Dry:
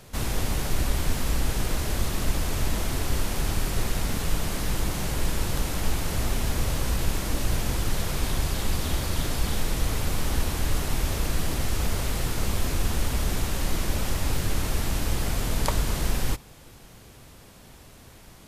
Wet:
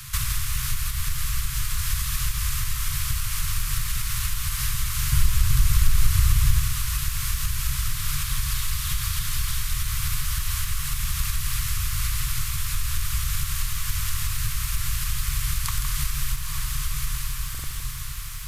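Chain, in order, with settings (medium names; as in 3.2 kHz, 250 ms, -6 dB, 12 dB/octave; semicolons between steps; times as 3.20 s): gain riding 0.5 s; Chebyshev band-stop 140–1100 Hz, order 4; treble shelf 7.4 kHz +9 dB; on a send: echo that smears into a reverb 844 ms, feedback 51%, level -10 dB; on the sum: compression 8:1, threshold -30 dBFS, peak gain reduction 13.5 dB; 5.12–6.59 s: bass shelf 350 Hz +9 dB; buffer glitch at 17.50 s, samples 2048, times 2; bit-crushed delay 163 ms, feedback 35%, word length 9-bit, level -7.5 dB; trim +8.5 dB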